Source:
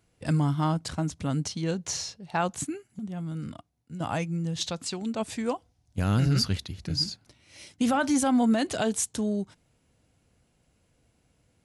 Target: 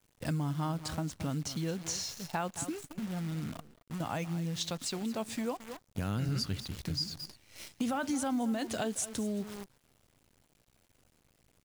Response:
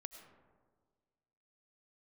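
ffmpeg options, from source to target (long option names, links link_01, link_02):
-filter_complex "[0:a]asettb=1/sr,asplit=3[link_01][link_02][link_03];[link_01]atrim=end=4.044[link_04];[link_02]atrim=start=4.04:end=6.29,asetpts=PTS-STARTPTS,afade=type=in:duration=0.004:curve=qsin,afade=type=out:start_time=2.246:duration=0.004:curve=qsin,highpass=85[link_05];[link_03]atrim=start=6.286[link_06];[link_04][link_05]acrossfade=duration=0.004:curve1=hsin:curve2=qsin[link_07];[link_07][link_06]acrossfade=duration=0.004:curve1=qsin:curve2=hsin,aecho=1:1:220:0.158,acrusher=bits=8:dc=4:mix=0:aa=0.000001,acompressor=threshold=-34dB:ratio=2.5"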